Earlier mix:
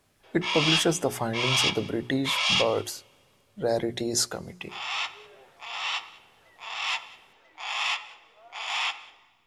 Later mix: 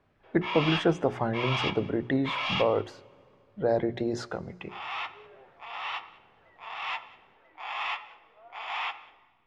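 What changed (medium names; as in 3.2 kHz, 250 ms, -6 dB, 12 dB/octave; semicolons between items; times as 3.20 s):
speech: send +8.5 dB; master: add low-pass 2 kHz 12 dB/octave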